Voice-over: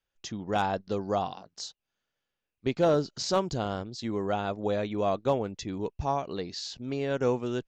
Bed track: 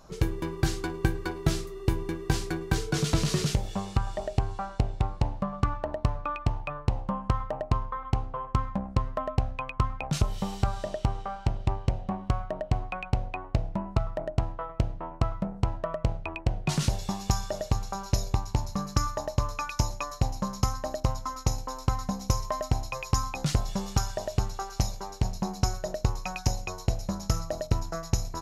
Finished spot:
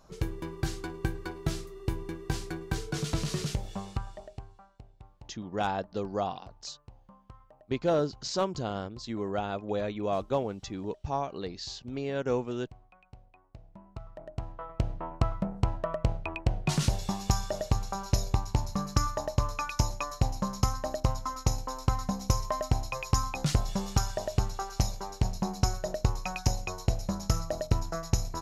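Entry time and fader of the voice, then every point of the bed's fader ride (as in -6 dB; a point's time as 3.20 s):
5.05 s, -2.5 dB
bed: 3.89 s -5.5 dB
4.76 s -25 dB
13.47 s -25 dB
14.93 s -0.5 dB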